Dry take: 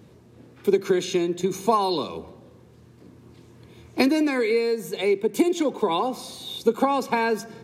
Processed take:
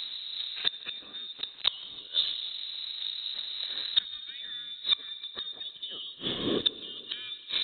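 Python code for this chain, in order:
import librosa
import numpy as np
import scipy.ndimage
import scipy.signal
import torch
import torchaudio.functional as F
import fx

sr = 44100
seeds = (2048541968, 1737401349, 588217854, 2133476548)

p1 = fx.delta_hold(x, sr, step_db=-29.0, at=(1.33, 1.99), fade=0.02)
p2 = fx.highpass(p1, sr, hz=380.0, slope=12, at=(6.18, 7.07))
p3 = fx.env_lowpass(p2, sr, base_hz=2400.0, full_db=-18.5)
p4 = fx.rider(p3, sr, range_db=4, speed_s=2.0)
p5 = p3 + (p4 * 10.0 ** (1.0 / 20.0))
p6 = fx.leveller(p5, sr, passes=1)
p7 = fx.gate_flip(p6, sr, shuts_db=-13.0, range_db=-36)
p8 = fx.rev_plate(p7, sr, seeds[0], rt60_s=2.7, hf_ratio=0.5, predelay_ms=0, drr_db=15.5)
p9 = fx.freq_invert(p8, sr, carrier_hz=4000)
p10 = fx.echo_feedback(p9, sr, ms=155, feedback_pct=52, wet_db=-22)
p11 = fx.band_squash(p10, sr, depth_pct=40)
y = p11 * 10.0 ** (4.0 / 20.0)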